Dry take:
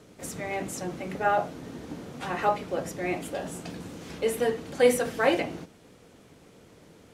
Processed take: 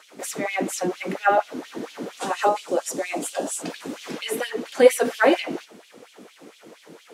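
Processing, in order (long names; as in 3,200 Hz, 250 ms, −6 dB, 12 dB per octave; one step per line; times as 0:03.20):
0:02.17–0:03.62: octave-band graphic EQ 125/2,000/8,000 Hz −6/−7/+9 dB
in parallel at −2 dB: downward compressor, threshold −33 dBFS, peak gain reduction 17 dB
on the sum: auto-filter high-pass sine 4.3 Hz 230–3,300 Hz
level +1.5 dB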